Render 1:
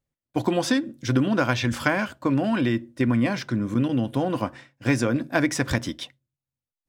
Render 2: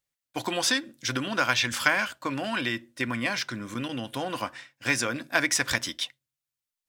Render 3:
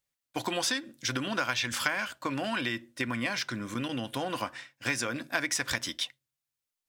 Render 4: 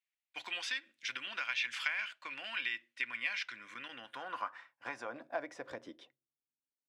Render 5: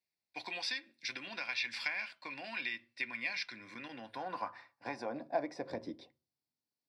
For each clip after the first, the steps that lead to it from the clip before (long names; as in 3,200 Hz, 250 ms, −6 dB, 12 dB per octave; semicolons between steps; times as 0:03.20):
tilt shelving filter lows −9.5 dB, about 770 Hz; level −3.5 dB
downward compressor 2.5 to 1, threshold −28 dBFS, peak gain reduction 8 dB
band-pass filter sweep 2,400 Hz → 250 Hz, 0:03.52–0:06.68
convolution reverb RT60 0.35 s, pre-delay 3 ms, DRR 12.5 dB; level −4.5 dB